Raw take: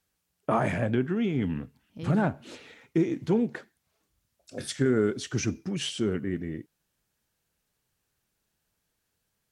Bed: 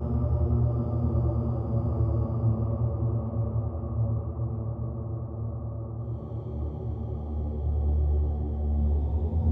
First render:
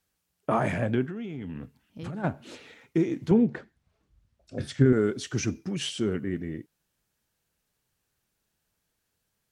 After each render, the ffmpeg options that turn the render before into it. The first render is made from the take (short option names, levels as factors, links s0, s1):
-filter_complex "[0:a]asplit=3[s0][s1][s2];[s0]afade=t=out:st=1.05:d=0.02[s3];[s1]acompressor=threshold=0.0251:ratio=10:attack=3.2:release=140:knee=1:detection=peak,afade=t=in:st=1.05:d=0.02,afade=t=out:st=2.23:d=0.02[s4];[s2]afade=t=in:st=2.23:d=0.02[s5];[s3][s4][s5]amix=inputs=3:normalize=0,asettb=1/sr,asplit=3[s6][s7][s8];[s6]atrim=end=3.314[s9];[s7]atrim=start=3.31:end=4.93,asetpts=PTS-STARTPTS,afade=t=in:d=0.004:c=qsin,afade=t=out:st=1.616:d=0.004:c=qsin,aemphasis=mode=reproduction:type=bsi[s10];[s8]atrim=start=4.926[s11];[s9][s10]acrossfade=d=0.004:c1=hsin:c2=qsin[s12];[s12][s11]acrossfade=d=0.004:c1=qsin:c2=hsin"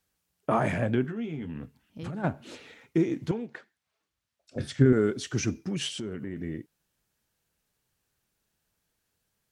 -filter_complex "[0:a]asettb=1/sr,asplit=3[s0][s1][s2];[s0]atrim=end=1.034[s3];[s1]atrim=start=1.03:end=1.47,asetpts=PTS-STARTPTS,afade=t=in:d=0.004:c=qsin,afade=t=out:st=0.436:d=0.004:c=qsin,asplit=2[s4][s5];[s5]adelay=13,volume=0.531[s6];[s4][s6]amix=inputs=2:normalize=0,atrim=end_sample=19404[s7];[s2]atrim=start=1.466[s8];[s3][s7]acrossfade=d=0.004:c1=hsin:c2=qsin[s9];[s9][s8]acrossfade=d=0.004:c1=qsin:c2=hsin,asettb=1/sr,asplit=3[s10][s11][s12];[s10]atrim=end=3.314[s13];[s11]atrim=start=3.31:end=4.56,asetpts=PTS-STARTPTS,afade=t=in:d=0.004:c=qsin,afade=t=out:st=1.246:d=0.004:c=qsin,highpass=f=1400:p=1[s14];[s12]atrim=start=4.556[s15];[s13][s14]acrossfade=d=0.004:c1=hsin:c2=qsin[s16];[s16][s15]acrossfade=d=0.004:c1=qsin:c2=hsin,asplit=3[s17][s18][s19];[s17]afade=t=out:st=5.87:d=0.02[s20];[s18]acompressor=threshold=0.0282:ratio=6:attack=3.2:release=140:knee=1:detection=peak,afade=t=in:st=5.87:d=0.02,afade=t=out:st=6.36:d=0.02[s21];[s19]afade=t=in:st=6.36:d=0.02[s22];[s20][s21][s22]amix=inputs=3:normalize=0"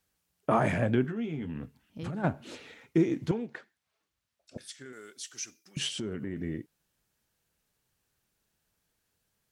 -filter_complex "[0:a]asettb=1/sr,asplit=3[s0][s1][s2];[s0]atrim=end=4.574[s3];[s1]atrim=start=4.57:end=5.77,asetpts=PTS-STARTPTS,afade=t=in:d=0.004:c=qsin,afade=t=out:st=1.196:d=0.004:c=qsin,aderivative[s4];[s2]atrim=start=5.766[s5];[s3][s4]acrossfade=d=0.004:c1=hsin:c2=qsin[s6];[s6][s5]acrossfade=d=0.004:c1=qsin:c2=hsin"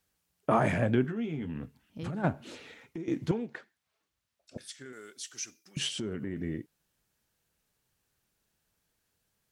-filter_complex "[0:a]asettb=1/sr,asplit=3[s0][s1][s2];[s0]atrim=end=2.484[s3];[s1]atrim=start=2.48:end=3.08,asetpts=PTS-STARTPTS,afade=t=in:d=0.004:c=qsin,afade=t=out:st=0.596:d=0.004:c=qsin,acompressor=threshold=0.00891:ratio=3:attack=3.2:release=140:knee=1:detection=peak[s4];[s2]atrim=start=3.076[s5];[s3][s4]acrossfade=d=0.004:c1=hsin:c2=qsin[s6];[s6][s5]acrossfade=d=0.004:c1=qsin:c2=hsin"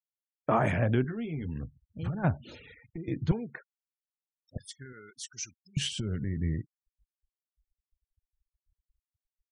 -af "asubboost=boost=8:cutoff=110,afftfilt=real='re*gte(hypot(re,im),0.00501)':imag='im*gte(hypot(re,im),0.00501)':win_size=1024:overlap=0.75"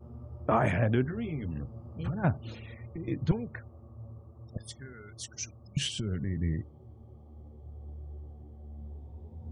-filter_complex "[1:a]volume=0.119[s0];[0:a][s0]amix=inputs=2:normalize=0"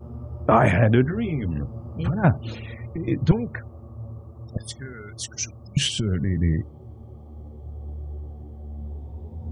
-af "volume=2.82"